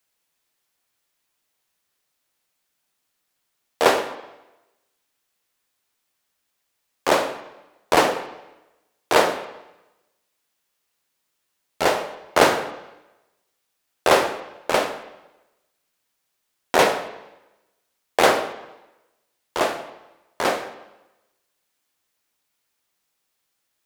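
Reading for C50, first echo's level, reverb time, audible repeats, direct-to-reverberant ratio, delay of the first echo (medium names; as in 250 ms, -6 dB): 11.0 dB, no echo, 1.0 s, no echo, 8.0 dB, no echo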